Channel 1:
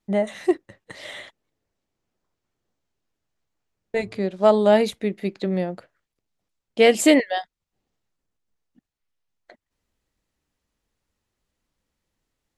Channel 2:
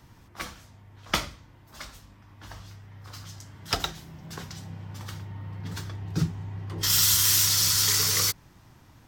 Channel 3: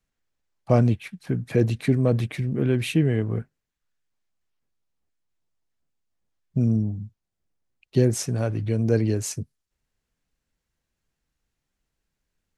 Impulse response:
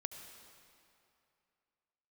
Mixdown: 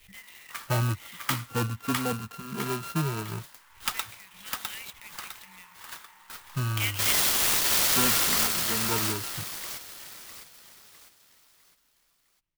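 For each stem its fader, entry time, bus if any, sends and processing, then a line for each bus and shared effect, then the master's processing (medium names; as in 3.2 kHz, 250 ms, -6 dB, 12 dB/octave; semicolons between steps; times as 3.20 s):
+1.5 dB, 0.00 s, no send, echo send -18 dB, inverse Chebyshev band-stop 270–970 Hz, stop band 60 dB; three-band isolator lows -17 dB, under 540 Hz, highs -23 dB, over 3 kHz; swell ahead of each attack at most 83 dB/s
-1.5 dB, 0.15 s, no send, echo send -3.5 dB, steep high-pass 890 Hz 48 dB/octave; vibrato 0.73 Hz 59 cents
-5.5 dB, 0.00 s, no send, no echo send, sorted samples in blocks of 32 samples; endless flanger 2.6 ms -0.34 Hz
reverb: none
echo: feedback delay 655 ms, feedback 40%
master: sampling jitter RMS 0.046 ms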